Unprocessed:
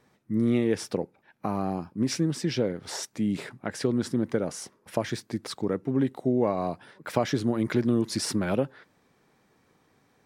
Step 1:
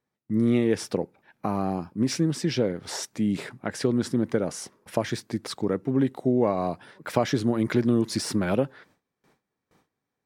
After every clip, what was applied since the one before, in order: gate with hold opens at -53 dBFS; de-esser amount 60%; gain +2 dB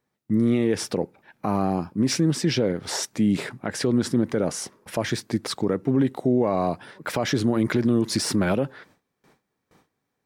limiter -17.5 dBFS, peak gain reduction 11 dB; gain +5 dB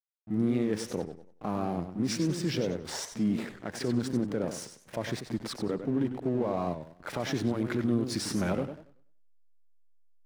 pre-echo 34 ms -12 dB; backlash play -32 dBFS; warbling echo 95 ms, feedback 30%, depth 191 cents, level -9 dB; gain -8 dB

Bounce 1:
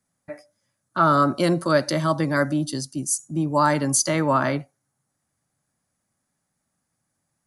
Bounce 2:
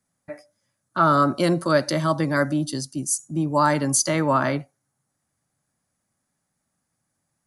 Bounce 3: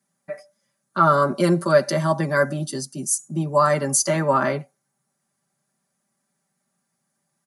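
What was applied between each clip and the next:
nothing audible
HPF 130 Hz; comb 5.1 ms, depth 79%; dynamic EQ 3700 Hz, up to -6 dB, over -41 dBFS, Q 1.4

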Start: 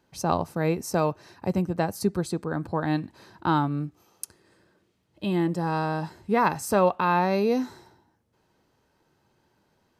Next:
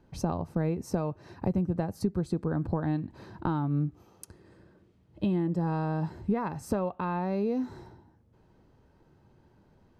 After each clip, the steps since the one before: compressor 6:1, threshold -32 dBFS, peak gain reduction 15.5 dB; tilt -3 dB/oct; gain +1 dB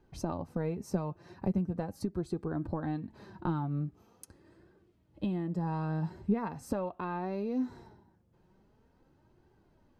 flange 0.42 Hz, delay 2.4 ms, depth 3.5 ms, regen +48%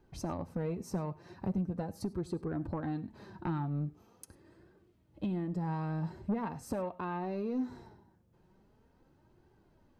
soft clip -26 dBFS, distortion -15 dB; on a send at -19 dB: reverb, pre-delay 3 ms

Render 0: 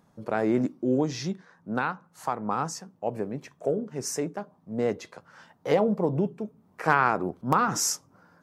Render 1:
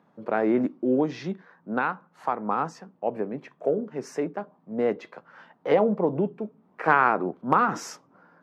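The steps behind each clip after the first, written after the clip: three-band isolator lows -24 dB, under 160 Hz, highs -21 dB, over 3400 Hz; gain +2.5 dB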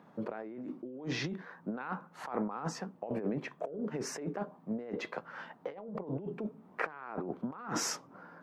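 negative-ratio compressor -35 dBFS, ratio -1; gain -4 dB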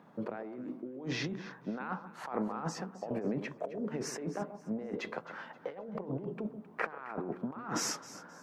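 echo with dull and thin repeats by turns 0.132 s, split 1100 Hz, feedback 56%, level -11 dB

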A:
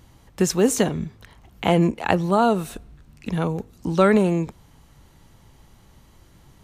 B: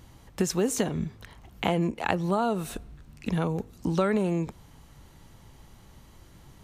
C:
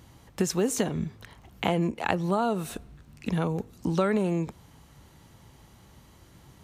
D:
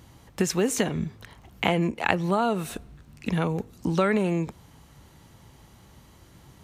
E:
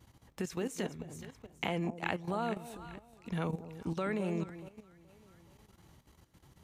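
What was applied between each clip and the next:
compressor 3:1, threshold -24 dBFS, peak gain reduction 9.5 dB
HPF 58 Hz
dynamic EQ 2200 Hz, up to +6 dB, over -46 dBFS, Q 1.3; gain +1.5 dB
echo with dull and thin repeats by turns 0.212 s, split 880 Hz, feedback 59%, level -8 dB; level quantiser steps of 13 dB; gain -7.5 dB

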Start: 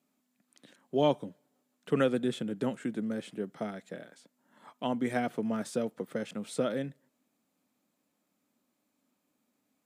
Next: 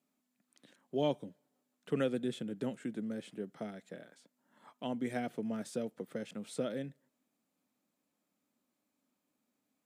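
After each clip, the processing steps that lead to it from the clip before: dynamic EQ 1100 Hz, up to -6 dB, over -49 dBFS, Q 1.5; gain -5 dB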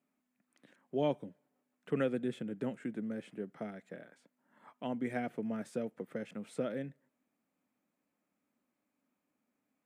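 resonant high shelf 2900 Hz -6.5 dB, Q 1.5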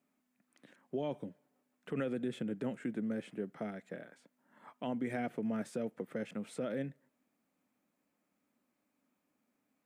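limiter -30 dBFS, peak gain reduction 9.5 dB; gain +2.5 dB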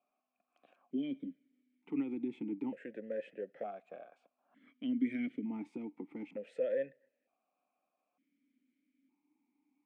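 vowel sequencer 1.1 Hz; gain +9 dB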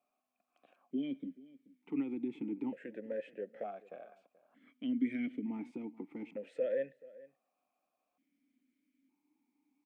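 outdoor echo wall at 74 m, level -20 dB

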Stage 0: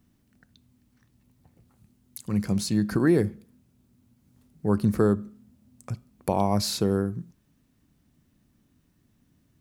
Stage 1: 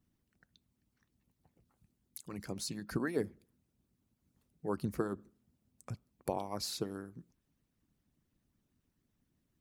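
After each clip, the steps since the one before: harmonic-percussive split harmonic -18 dB; gain -7 dB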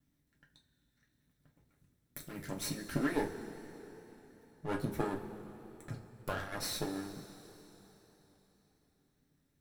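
minimum comb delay 0.53 ms; two-slope reverb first 0.24 s, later 3.8 s, from -19 dB, DRR -1.5 dB; wow and flutter 24 cents

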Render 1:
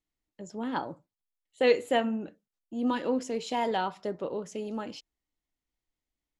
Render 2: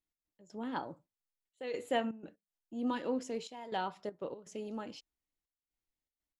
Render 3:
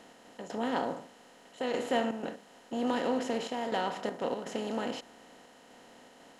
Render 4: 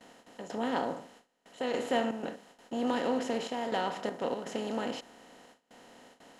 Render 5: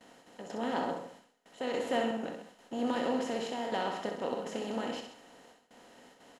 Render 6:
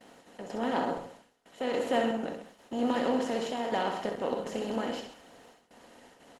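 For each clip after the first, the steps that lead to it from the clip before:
step gate "x.x.xxxxxxxx..xx" 121 bpm -12 dB; gain -6 dB
per-bin compression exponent 0.4
gate with hold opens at -45 dBFS
tapped delay 63/131/205 ms -6/-11/-19.5 dB; gain -2.5 dB
gain +3.5 dB; Opus 20 kbps 48000 Hz

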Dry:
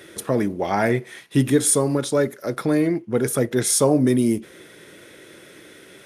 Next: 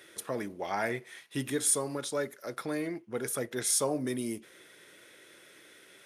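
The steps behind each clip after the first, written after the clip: low shelf 450 Hz -11.5 dB; gain -7.5 dB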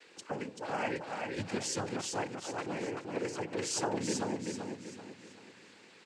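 noise vocoder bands 8; on a send: feedback echo 0.385 s, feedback 39%, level -4 dB; on the sum: gain -3 dB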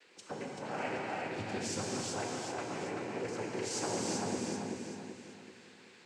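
non-linear reverb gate 0.43 s flat, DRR -2 dB; gain -5 dB

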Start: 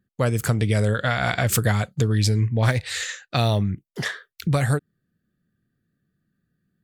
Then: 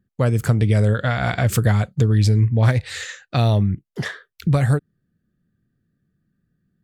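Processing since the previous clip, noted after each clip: tilt -1.5 dB/oct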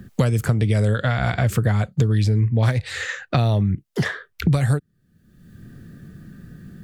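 three-band squash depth 100%; gain -2 dB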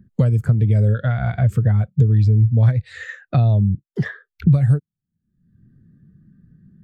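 spectral expander 1.5:1; gain -3 dB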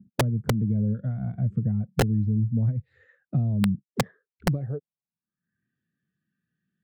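band-pass sweep 210 Hz -> 2800 Hz, 4.28–5.78; wrapped overs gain 14.5 dB

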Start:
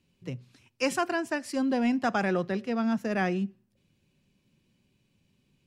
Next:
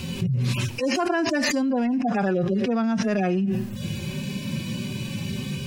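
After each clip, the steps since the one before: median-filter separation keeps harmonic; fast leveller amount 100%; gain +1 dB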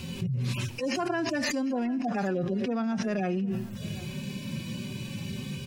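echo 0.754 s -19.5 dB; gain -6 dB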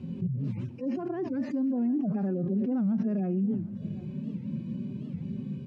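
band-pass 220 Hz, Q 1.4; record warp 78 rpm, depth 250 cents; gain +3 dB

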